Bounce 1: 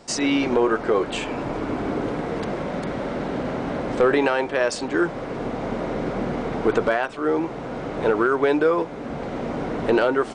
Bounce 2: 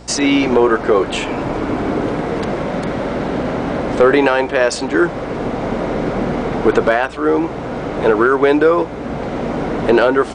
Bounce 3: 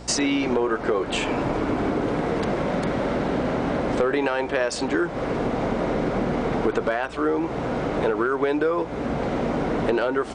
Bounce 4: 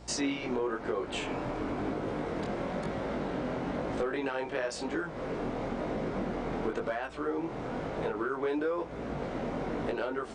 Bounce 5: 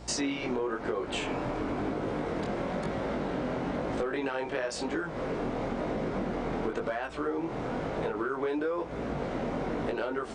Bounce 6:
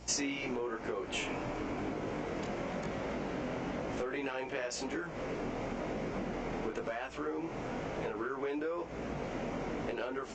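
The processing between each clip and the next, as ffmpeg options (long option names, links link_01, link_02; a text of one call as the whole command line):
ffmpeg -i in.wav -af "aeval=exprs='val(0)+0.00501*(sin(2*PI*60*n/s)+sin(2*PI*2*60*n/s)/2+sin(2*PI*3*60*n/s)/3+sin(2*PI*4*60*n/s)/4+sin(2*PI*5*60*n/s)/5)':channel_layout=same,volume=7dB" out.wav
ffmpeg -i in.wav -af "acompressor=threshold=-19dB:ratio=4,volume=-1.5dB" out.wav
ffmpeg -i in.wav -af "flanger=delay=18.5:depth=5.4:speed=1,volume=-7dB" out.wav
ffmpeg -i in.wav -af "acompressor=threshold=-34dB:ratio=2,volume=4dB" out.wav
ffmpeg -i in.wav -af "aexciter=amount=1.2:drive=6.5:freq=2100,volume=-5.5dB" -ar 16000 -c:a libvorbis -b:a 48k out.ogg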